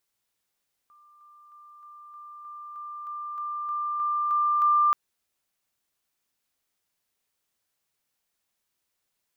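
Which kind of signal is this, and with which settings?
level ladder 1190 Hz -53.5 dBFS, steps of 3 dB, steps 13, 0.31 s 0.00 s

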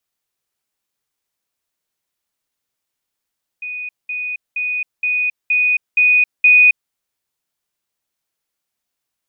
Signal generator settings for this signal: level ladder 2480 Hz -24 dBFS, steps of 3 dB, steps 7, 0.27 s 0.20 s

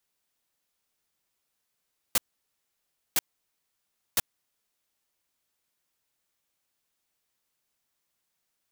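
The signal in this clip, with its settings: noise bursts white, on 0.03 s, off 0.98 s, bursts 3, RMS -22.5 dBFS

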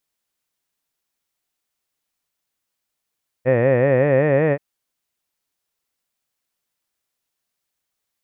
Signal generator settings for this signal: formant-synthesis vowel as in head, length 1.13 s, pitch 121 Hz, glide +4 st, vibrato depth 1.35 st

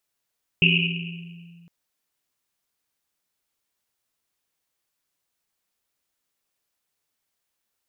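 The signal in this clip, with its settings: Risset drum length 1.06 s, pitch 170 Hz, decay 2.29 s, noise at 2700 Hz, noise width 480 Hz, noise 55%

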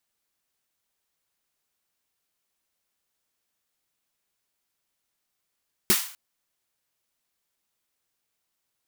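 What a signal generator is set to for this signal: snare drum length 0.25 s, tones 210 Hz, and 360 Hz, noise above 950 Hz, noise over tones 3 dB, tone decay 0.09 s, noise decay 0.46 s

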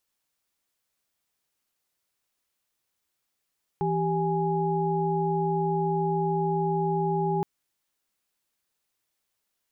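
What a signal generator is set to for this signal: chord E3/G4/G#5 sine, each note -27.5 dBFS 3.62 s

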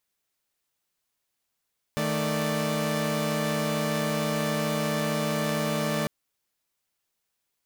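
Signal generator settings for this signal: chord D#3/A3/D5 saw, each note -27 dBFS 4.10 s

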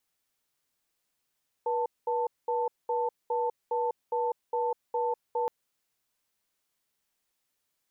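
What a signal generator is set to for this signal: cadence 483 Hz, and 887 Hz, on 0.20 s, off 0.21 s, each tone -28.5 dBFS 3.82 s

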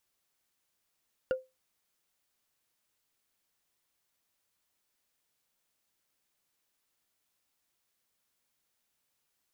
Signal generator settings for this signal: wood hit, lowest mode 518 Hz, decay 0.22 s, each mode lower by 8.5 dB, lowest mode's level -22.5 dB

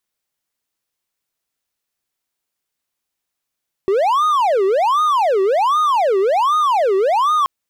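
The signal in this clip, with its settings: siren wail 380–1240 Hz 1.3/s triangle -10.5 dBFS 3.58 s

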